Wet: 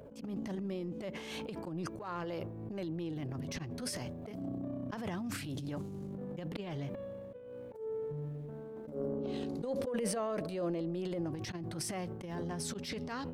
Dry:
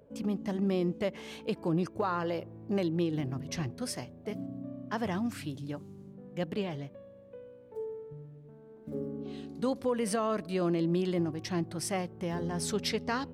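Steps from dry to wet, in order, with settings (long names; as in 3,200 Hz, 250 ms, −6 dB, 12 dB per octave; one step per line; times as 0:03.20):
volume swells 204 ms
downward compressor 20 to 1, threshold −42 dBFS, peak gain reduction 17.5 dB
hard clipping −36.5 dBFS, distortion −35 dB
0:08.85–0:11.27: parametric band 540 Hz +9.5 dB 0.59 octaves
transient designer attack −10 dB, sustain +9 dB
level +7 dB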